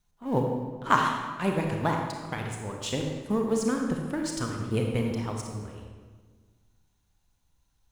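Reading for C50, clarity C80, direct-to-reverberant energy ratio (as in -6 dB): 2.5 dB, 4.5 dB, 1.5 dB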